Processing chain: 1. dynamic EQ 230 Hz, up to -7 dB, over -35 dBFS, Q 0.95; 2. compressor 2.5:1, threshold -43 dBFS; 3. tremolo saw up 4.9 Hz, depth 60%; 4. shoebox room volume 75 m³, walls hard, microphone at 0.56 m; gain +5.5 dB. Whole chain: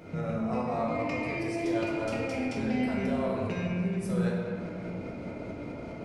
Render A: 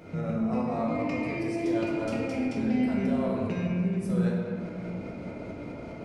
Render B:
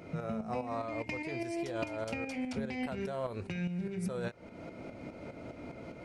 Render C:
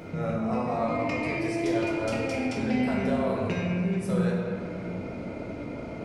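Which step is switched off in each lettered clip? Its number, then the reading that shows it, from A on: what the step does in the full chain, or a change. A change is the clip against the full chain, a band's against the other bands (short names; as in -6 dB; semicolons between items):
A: 1, momentary loudness spread change +2 LU; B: 4, echo-to-direct 4.0 dB to none; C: 3, loudness change +3.0 LU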